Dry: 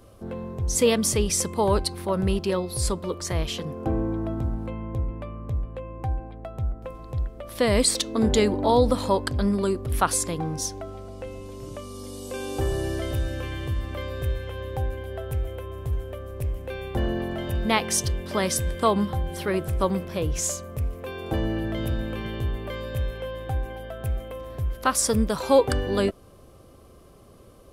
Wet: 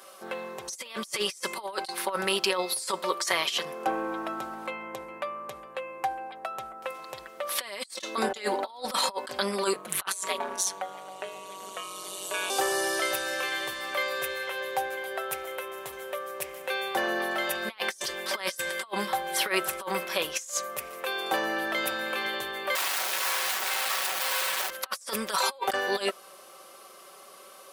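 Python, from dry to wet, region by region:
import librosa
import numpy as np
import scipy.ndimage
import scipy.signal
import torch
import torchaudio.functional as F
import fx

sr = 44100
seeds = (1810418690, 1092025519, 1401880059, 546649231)

y = fx.chain(x, sr, fx.ring_mod(carrier_hz=94.0),
    fx.peak_eq(hz=5100.0, db=-11.5, octaves=0.23),
    fx.doppler_dist(depth_ms=0.17), at=(9.73, 12.5))
y = fx.chain(y, sr, fx.delta_mod(bps=64000, step_db=-29.5),
    fx.bass_treble(bass_db=-7, treble_db=-2),
    fx.overflow_wrap(gain_db=33.5), at=(22.75, 24.7))
y = scipy.signal.sosfilt(scipy.signal.butter(2, 960.0, 'highpass', fs=sr, output='sos'), y)
y = fx.over_compress(y, sr, threshold_db=-36.0, ratio=-0.5)
y = y + 0.57 * np.pad(y, (int(5.3 * sr / 1000.0), 0))[:len(y)]
y = y * 10.0 ** (6.0 / 20.0)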